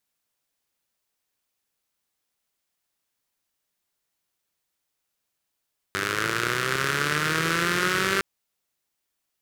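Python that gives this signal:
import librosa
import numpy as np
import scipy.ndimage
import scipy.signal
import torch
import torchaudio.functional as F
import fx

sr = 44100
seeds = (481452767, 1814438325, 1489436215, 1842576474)

y = fx.engine_four_rev(sr, seeds[0], length_s=2.26, rpm=2900, resonances_hz=(160.0, 370.0, 1400.0), end_rpm=5900)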